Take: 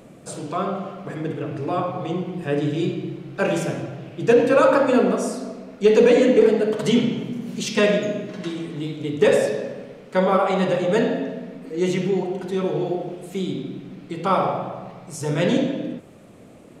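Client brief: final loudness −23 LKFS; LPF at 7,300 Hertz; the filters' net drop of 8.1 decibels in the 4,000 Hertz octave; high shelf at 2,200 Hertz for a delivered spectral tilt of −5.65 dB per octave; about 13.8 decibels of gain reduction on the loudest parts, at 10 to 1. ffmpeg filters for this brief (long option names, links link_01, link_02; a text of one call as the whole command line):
ffmpeg -i in.wav -af "lowpass=7300,highshelf=frequency=2200:gain=-3.5,equalizer=frequency=4000:width_type=o:gain=-7.5,acompressor=threshold=-25dB:ratio=10,volume=7.5dB" out.wav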